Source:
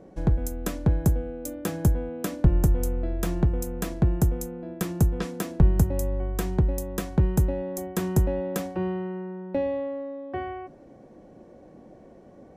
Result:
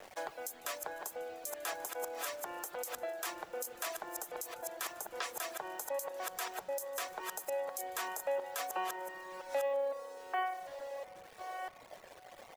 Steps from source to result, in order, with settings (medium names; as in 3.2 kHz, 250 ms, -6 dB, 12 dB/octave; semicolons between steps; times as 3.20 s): chunks repeated in reverse 649 ms, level -11 dB; high-pass 660 Hz 24 dB/octave; in parallel at +3 dB: compression, threshold -46 dBFS, peak gain reduction 15 dB; on the sum: peak limiter -26.5 dBFS, peak gain reduction 11 dB; small samples zeroed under -49 dBFS; reverb removal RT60 1.3 s; frequency-shifting echo 150 ms, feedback 61%, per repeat -33 Hz, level -22 dB; on a send at -17 dB: reverberation RT60 4.2 s, pre-delay 33 ms; on the sum: trim +1.5 dB